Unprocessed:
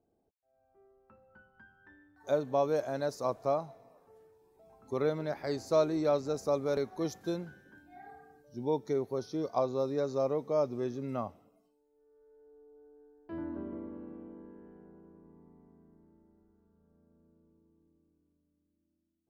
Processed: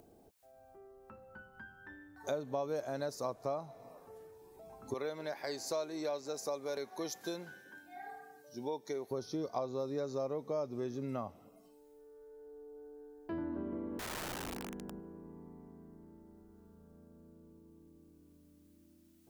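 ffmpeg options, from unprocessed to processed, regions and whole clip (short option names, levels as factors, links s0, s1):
-filter_complex "[0:a]asettb=1/sr,asplit=3[s0][s1][s2];[s0]atrim=end=4.944[s3];[s1]atrim=start=4.94:end=9.11,asetpts=PTS-STARTPTS,afade=t=in:d=0.004:c=qsin,afade=t=out:st=4.166:d=0.004:c=qsin,highpass=f=720:p=1,bandreject=f=1300:w=9[s4];[s2]atrim=start=9.106[s5];[s3][s4]acrossfade=d=0.004:c1=hsin:c2=qsin[s6];[s6][s5]acrossfade=d=0.004:c1=qsin:c2=hsin,asettb=1/sr,asplit=3[s7][s8][s9];[s7]atrim=end=13.994[s10];[s8]atrim=start=13.99:end=15,asetpts=PTS-STARTPTS,afade=t=in:d=0.004:c=qsin,afade=t=out:st=1.006:d=0.004:c=qsin,equalizer=f=220:w=3.2:g=8.5,aeval=exprs='val(0)+0.000501*(sin(2*PI*50*n/s)+sin(2*PI*2*50*n/s)/2+sin(2*PI*3*50*n/s)/3+sin(2*PI*4*50*n/s)/4+sin(2*PI*5*50*n/s)/5)':c=same,aeval=exprs='(mod(141*val(0)+1,2)-1)/141':c=same[s11];[s9]atrim=start=14.996[s12];[s10][s11]acrossfade=d=0.004:c1=hsin:c2=qsin[s13];[s13][s12]acrossfade=d=0.004:c1=qsin:c2=hsin,acompressor=threshold=0.00631:ratio=3,highshelf=f=5500:g=5.5,acompressor=mode=upward:threshold=0.00112:ratio=2.5,volume=2"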